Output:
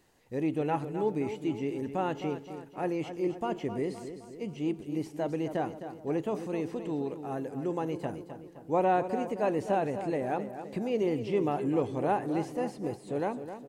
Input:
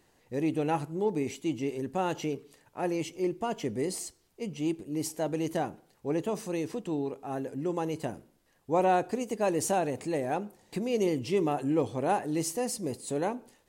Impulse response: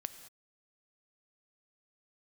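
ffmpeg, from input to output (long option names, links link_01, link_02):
-filter_complex "[0:a]asplit=2[link_01][link_02];[link_02]adelay=260,lowpass=frequency=2300:poles=1,volume=-10dB,asplit=2[link_03][link_04];[link_04]adelay=260,lowpass=frequency=2300:poles=1,volume=0.54,asplit=2[link_05][link_06];[link_06]adelay=260,lowpass=frequency=2300:poles=1,volume=0.54,asplit=2[link_07][link_08];[link_08]adelay=260,lowpass=frequency=2300:poles=1,volume=0.54,asplit=2[link_09][link_10];[link_10]adelay=260,lowpass=frequency=2300:poles=1,volume=0.54,asplit=2[link_11][link_12];[link_12]adelay=260,lowpass=frequency=2300:poles=1,volume=0.54[link_13];[link_01][link_03][link_05][link_07][link_09][link_11][link_13]amix=inputs=7:normalize=0,acrossover=split=3100[link_14][link_15];[link_15]acompressor=threshold=-58dB:ratio=4:attack=1:release=60[link_16];[link_14][link_16]amix=inputs=2:normalize=0,volume=-1dB"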